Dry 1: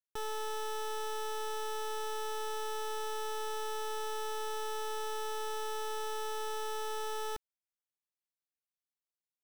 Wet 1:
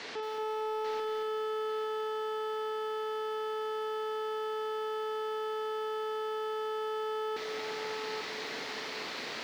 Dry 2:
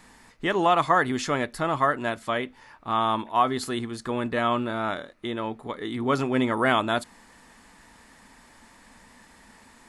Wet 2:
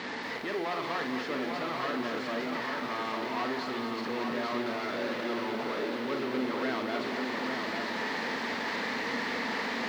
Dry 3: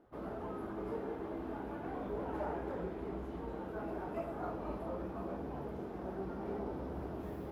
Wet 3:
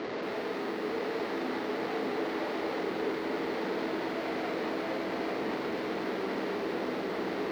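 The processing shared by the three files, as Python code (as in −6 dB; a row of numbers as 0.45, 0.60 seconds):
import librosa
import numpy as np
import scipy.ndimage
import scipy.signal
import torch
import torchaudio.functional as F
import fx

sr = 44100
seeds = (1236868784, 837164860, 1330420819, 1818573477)

y = fx.delta_mod(x, sr, bps=64000, step_db=-21.0)
y = fx.high_shelf(y, sr, hz=3600.0, db=-10.0)
y = fx.rider(y, sr, range_db=10, speed_s=2.0)
y = fx.tube_stage(y, sr, drive_db=25.0, bias=0.6)
y = fx.add_hum(y, sr, base_hz=50, snr_db=26)
y = fx.cabinet(y, sr, low_hz=230.0, low_slope=12, high_hz=5200.0, hz=(250.0, 440.0, 2000.0, 4300.0), db=(4, 6, 5, 4))
y = fx.doubler(y, sr, ms=47.0, db=-8.0)
y = fx.echo_feedback(y, sr, ms=845, feedback_pct=30, wet_db=-4.5)
y = fx.echo_crushed(y, sr, ms=228, feedback_pct=35, bits=8, wet_db=-7)
y = F.gain(torch.from_numpy(y), -6.5).numpy()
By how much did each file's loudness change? 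+3.0, −7.0, +8.0 LU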